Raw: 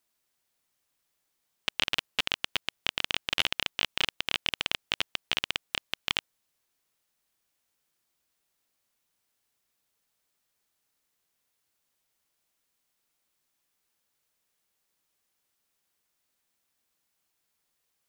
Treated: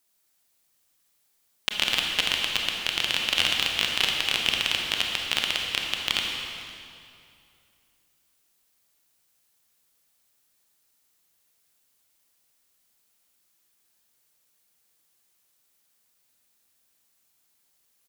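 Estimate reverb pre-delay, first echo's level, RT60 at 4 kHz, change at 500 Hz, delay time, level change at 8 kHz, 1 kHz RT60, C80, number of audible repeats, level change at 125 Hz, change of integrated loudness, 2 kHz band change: 27 ms, -21.0 dB, 2.1 s, +4.0 dB, 0.504 s, +8.5 dB, 2.4 s, 2.5 dB, 1, +4.5 dB, +6.0 dB, +5.5 dB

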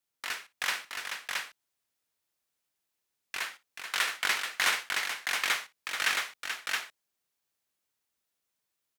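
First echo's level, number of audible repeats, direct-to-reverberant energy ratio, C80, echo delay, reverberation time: -18.0 dB, 3, none, none, 58 ms, none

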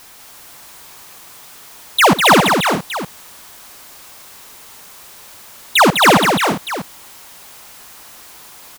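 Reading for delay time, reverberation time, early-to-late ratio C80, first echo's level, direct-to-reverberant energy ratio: 71 ms, none, none, -17.5 dB, none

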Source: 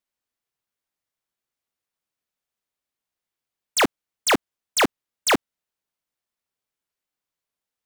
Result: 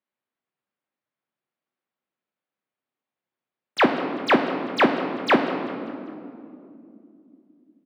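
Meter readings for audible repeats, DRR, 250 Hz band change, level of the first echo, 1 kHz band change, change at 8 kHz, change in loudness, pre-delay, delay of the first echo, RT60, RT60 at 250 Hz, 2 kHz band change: 3, 4.0 dB, +5.0 dB, -17.0 dB, +2.5 dB, under -20 dB, 0.0 dB, 4 ms, 0.197 s, 2.6 s, 4.5 s, +1.0 dB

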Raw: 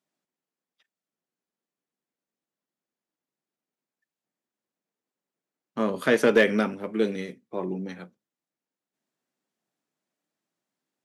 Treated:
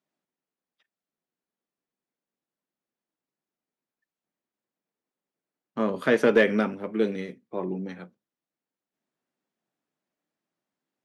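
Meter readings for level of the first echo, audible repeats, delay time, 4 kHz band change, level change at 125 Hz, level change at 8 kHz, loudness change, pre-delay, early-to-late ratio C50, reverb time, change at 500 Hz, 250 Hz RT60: none, none, none, -3.0 dB, 0.0 dB, n/a, -0.5 dB, none, none, none, 0.0 dB, none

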